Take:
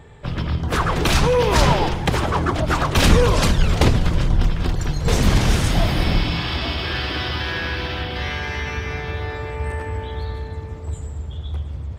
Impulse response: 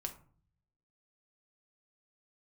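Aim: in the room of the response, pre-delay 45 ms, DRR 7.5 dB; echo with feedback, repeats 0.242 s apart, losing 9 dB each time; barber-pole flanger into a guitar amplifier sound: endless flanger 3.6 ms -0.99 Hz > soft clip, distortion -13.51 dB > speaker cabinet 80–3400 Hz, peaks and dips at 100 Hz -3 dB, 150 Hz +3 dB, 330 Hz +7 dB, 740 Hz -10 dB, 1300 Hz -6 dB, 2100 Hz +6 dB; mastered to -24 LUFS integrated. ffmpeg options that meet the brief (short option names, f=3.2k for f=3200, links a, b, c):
-filter_complex "[0:a]aecho=1:1:242|484|726|968:0.355|0.124|0.0435|0.0152,asplit=2[a][b];[1:a]atrim=start_sample=2205,adelay=45[c];[b][c]afir=irnorm=-1:irlink=0,volume=-6dB[d];[a][d]amix=inputs=2:normalize=0,asplit=2[e][f];[f]adelay=3.6,afreqshift=-0.99[g];[e][g]amix=inputs=2:normalize=1,asoftclip=threshold=-14.5dB,highpass=80,equalizer=f=100:t=q:w=4:g=-3,equalizer=f=150:t=q:w=4:g=3,equalizer=f=330:t=q:w=4:g=7,equalizer=f=740:t=q:w=4:g=-10,equalizer=f=1.3k:t=q:w=4:g=-6,equalizer=f=2.1k:t=q:w=4:g=6,lowpass=f=3.4k:w=0.5412,lowpass=f=3.4k:w=1.3066,volume=1dB"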